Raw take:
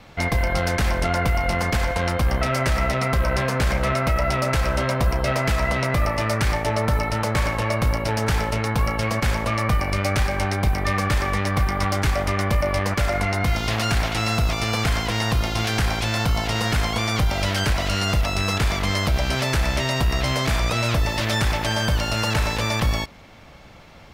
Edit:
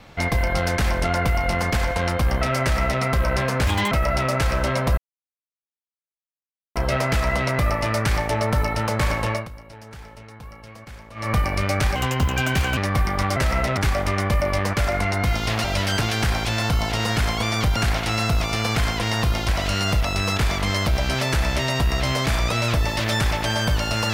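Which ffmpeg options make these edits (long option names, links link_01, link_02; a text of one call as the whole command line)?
ffmpeg -i in.wav -filter_complex "[0:a]asplit=14[link_01][link_02][link_03][link_04][link_05][link_06][link_07][link_08][link_09][link_10][link_11][link_12][link_13][link_14];[link_01]atrim=end=3.674[link_15];[link_02]atrim=start=3.67:end=4.05,asetpts=PTS-STARTPTS,asetrate=68355,aresample=44100[link_16];[link_03]atrim=start=4.046:end=5.11,asetpts=PTS-STARTPTS,afade=type=out:start_time=1.06:duration=0.004:curve=hsin,apad=pad_dur=1.78[link_17];[link_04]atrim=start=5.11:end=7.84,asetpts=PTS-STARTPTS,afade=type=in:duration=0.004:curve=hsin,afade=type=out:start_time=2.55:duration=0.18:silence=0.112202[link_18];[link_05]atrim=start=7.84:end=9.5,asetpts=PTS-STARTPTS,volume=-19dB[link_19];[link_06]atrim=start=9.5:end=10.314,asetpts=PTS-STARTPTS,afade=type=in:duration=0.18:silence=0.112202[link_20];[link_07]atrim=start=10.31:end=11.39,asetpts=PTS-STARTPTS,asetrate=58212,aresample=44100[link_21];[link_08]atrim=start=11.386:end=11.982[link_22];[link_09]atrim=start=2.618:end=3.032[link_23];[link_10]atrim=start=11.978:end=13.852[link_24];[link_11]atrim=start=17.318:end=17.692[link_25];[link_12]atrim=start=15.568:end=17.322[link_26];[link_13]atrim=start=13.848:end=15.572[link_27];[link_14]atrim=start=17.688[link_28];[link_15][link_16]acrossfade=duration=0.004:curve1=hsin:curve2=hsin[link_29];[link_17][link_18][link_19][link_20]concat=n=4:v=0:a=1[link_30];[link_29][link_30]acrossfade=duration=0.004:curve1=hsin:curve2=hsin[link_31];[link_31][link_21]acrossfade=duration=0.004:curve1=hsin:curve2=hsin[link_32];[link_32][link_22]acrossfade=duration=0.004:curve1=hsin:curve2=hsin[link_33];[link_33][link_23]acrossfade=duration=0.004:curve1=hsin:curve2=hsin[link_34];[link_34][link_24]acrossfade=duration=0.004:curve1=hsin:curve2=hsin[link_35];[link_35][link_25]acrossfade=duration=0.004:curve1=hsin:curve2=hsin[link_36];[link_36][link_26]acrossfade=duration=0.004:curve1=hsin:curve2=hsin[link_37];[link_37][link_27]acrossfade=duration=0.004:curve1=hsin:curve2=hsin[link_38];[link_38][link_28]acrossfade=duration=0.004:curve1=hsin:curve2=hsin" out.wav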